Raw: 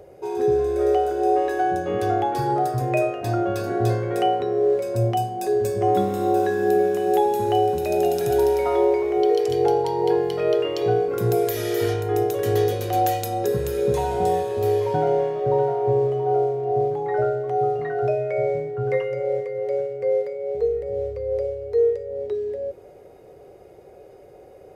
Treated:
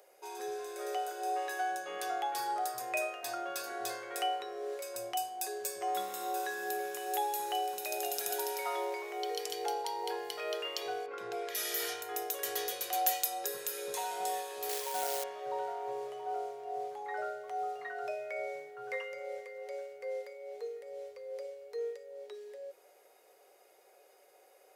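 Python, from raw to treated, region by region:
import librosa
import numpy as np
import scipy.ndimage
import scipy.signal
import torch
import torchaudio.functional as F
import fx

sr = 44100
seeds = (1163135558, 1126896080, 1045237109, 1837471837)

y = fx.chain(x, sr, fx.bandpass_edges(low_hz=110.0, high_hz=2900.0),
    fx.low_shelf(hz=140.0, db=6.0), at=(11.06, 11.55))
y = fx.chain(y, sr, fx.highpass(hz=120.0, slope=12),
    fx.quant_float(bits=2), at=(14.69, 15.24))
y = scipy.signal.sosfilt(scipy.signal.butter(2, 940.0, 'highpass', fs=sr, output='sos'), y)
y = fx.high_shelf(y, sr, hz=4600.0, db=10.0)
y = y * librosa.db_to_amplitude(-6.5)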